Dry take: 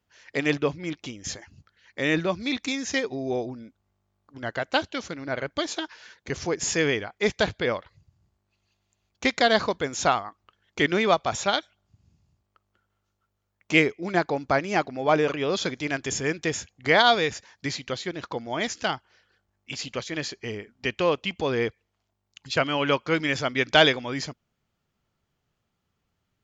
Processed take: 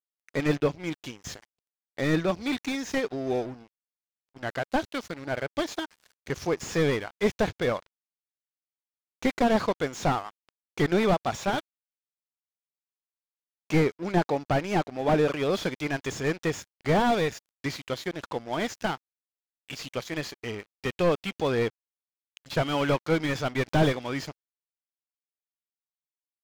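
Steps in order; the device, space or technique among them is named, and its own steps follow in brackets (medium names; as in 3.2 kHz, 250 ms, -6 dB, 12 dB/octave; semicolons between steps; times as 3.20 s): early transistor amplifier (crossover distortion -42.5 dBFS; slew-rate limiter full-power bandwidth 67 Hz); trim +1 dB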